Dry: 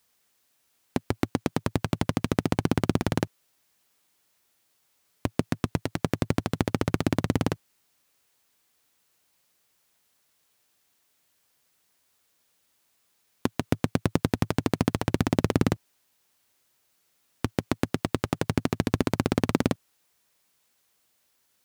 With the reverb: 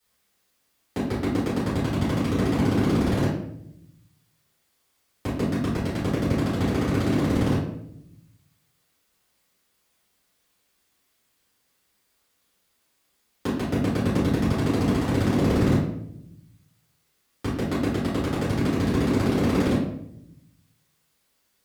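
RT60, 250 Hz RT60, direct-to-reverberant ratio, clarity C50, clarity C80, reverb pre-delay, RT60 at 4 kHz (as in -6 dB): 0.75 s, 1.2 s, -13.0 dB, 2.5 dB, 6.5 dB, 3 ms, 0.50 s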